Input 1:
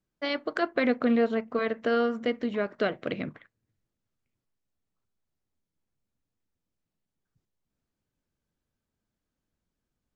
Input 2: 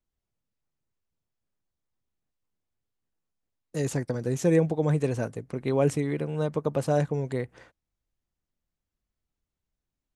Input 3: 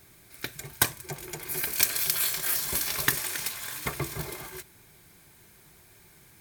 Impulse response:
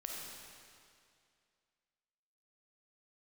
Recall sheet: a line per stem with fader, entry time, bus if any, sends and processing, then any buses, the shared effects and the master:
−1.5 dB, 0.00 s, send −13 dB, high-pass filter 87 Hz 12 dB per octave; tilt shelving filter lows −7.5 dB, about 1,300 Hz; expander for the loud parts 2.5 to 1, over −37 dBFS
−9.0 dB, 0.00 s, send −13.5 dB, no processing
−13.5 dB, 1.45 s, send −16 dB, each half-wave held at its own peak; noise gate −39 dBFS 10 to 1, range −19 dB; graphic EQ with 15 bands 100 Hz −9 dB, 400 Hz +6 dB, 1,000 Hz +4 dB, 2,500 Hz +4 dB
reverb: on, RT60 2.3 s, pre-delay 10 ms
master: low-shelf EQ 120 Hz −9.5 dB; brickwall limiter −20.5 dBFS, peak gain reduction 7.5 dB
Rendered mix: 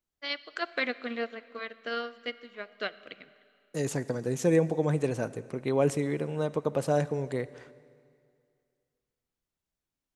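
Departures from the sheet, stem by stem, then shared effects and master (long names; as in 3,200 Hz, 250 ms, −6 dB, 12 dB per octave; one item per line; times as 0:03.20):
stem 2 −9.0 dB → −1.5 dB
stem 3: muted
master: missing brickwall limiter −20.5 dBFS, peak gain reduction 7.5 dB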